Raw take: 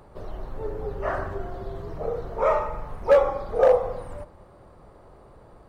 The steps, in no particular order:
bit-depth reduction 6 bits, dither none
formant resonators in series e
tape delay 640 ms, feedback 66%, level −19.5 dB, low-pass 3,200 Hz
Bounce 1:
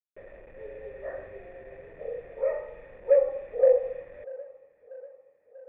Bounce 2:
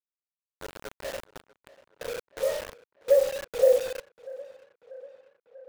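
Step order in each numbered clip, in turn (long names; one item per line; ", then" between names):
bit-depth reduction, then formant resonators in series, then tape delay
formant resonators in series, then bit-depth reduction, then tape delay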